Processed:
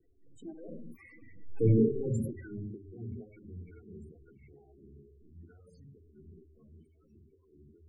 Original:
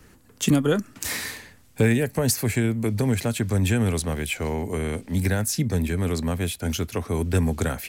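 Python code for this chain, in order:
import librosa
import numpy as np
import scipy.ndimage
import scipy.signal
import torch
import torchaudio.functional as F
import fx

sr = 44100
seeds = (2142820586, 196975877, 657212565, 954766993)

p1 = x + 0.5 * 10.0 ** (-34.0 / 20.0) * np.sign(x)
p2 = fx.doppler_pass(p1, sr, speed_mps=39, closest_m=5.2, pass_at_s=1.66)
p3 = fx.hum_notches(p2, sr, base_hz=50, count=8)
p4 = fx.room_shoebox(p3, sr, seeds[0], volume_m3=2300.0, walls='furnished', distance_m=3.5)
p5 = fx.transient(p4, sr, attack_db=-4, sustain_db=8)
p6 = fx.peak_eq(p5, sr, hz=3700.0, db=-5.5, octaves=1.9)
p7 = p6 + fx.echo_feedback(p6, sr, ms=85, feedback_pct=34, wet_db=-18.5, dry=0)
p8 = fx.spec_topn(p7, sr, count=16)
p9 = fx.stagger_phaser(p8, sr, hz=2.2)
y = p9 * 10.0 ** (-5.0 / 20.0)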